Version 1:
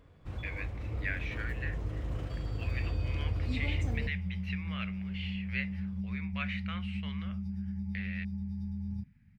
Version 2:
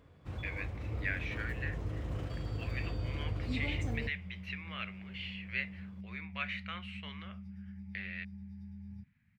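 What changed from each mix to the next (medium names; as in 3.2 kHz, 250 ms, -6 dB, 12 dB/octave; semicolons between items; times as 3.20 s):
second sound -9.5 dB; master: add high-pass 61 Hz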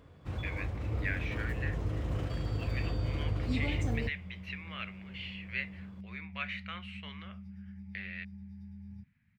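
first sound +4.0 dB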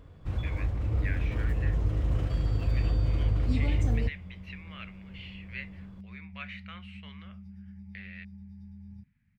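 speech -4.0 dB; first sound: add bass shelf 170 Hz +5.5 dB; master: remove high-pass 61 Hz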